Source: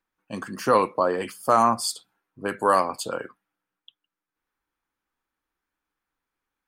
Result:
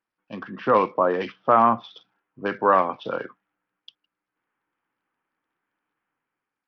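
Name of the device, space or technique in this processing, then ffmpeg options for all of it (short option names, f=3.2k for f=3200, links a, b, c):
Bluetooth headset: -af "highpass=f=110:w=0.5412,highpass=f=110:w=1.3066,dynaudnorm=f=190:g=7:m=7.5dB,aresample=8000,aresample=44100,volume=-2.5dB" -ar 44100 -c:a sbc -b:a 64k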